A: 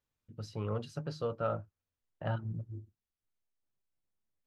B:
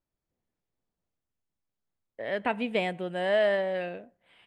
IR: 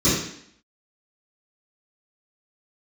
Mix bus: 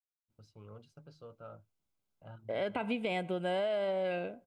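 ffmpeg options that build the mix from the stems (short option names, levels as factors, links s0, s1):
-filter_complex "[0:a]agate=range=0.2:threshold=0.00447:ratio=16:detection=peak,volume=0.158[s0];[1:a]alimiter=limit=0.0891:level=0:latency=1:release=34,adelay=300,volume=1.19[s1];[s0][s1]amix=inputs=2:normalize=0,asuperstop=centerf=1800:order=8:qfactor=6.2,acompressor=threshold=0.0316:ratio=6"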